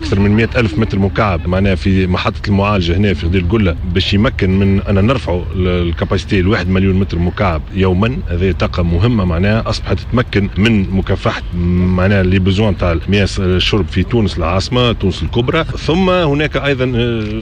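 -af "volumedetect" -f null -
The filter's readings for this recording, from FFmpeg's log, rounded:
mean_volume: -13.1 dB
max_volume: -1.4 dB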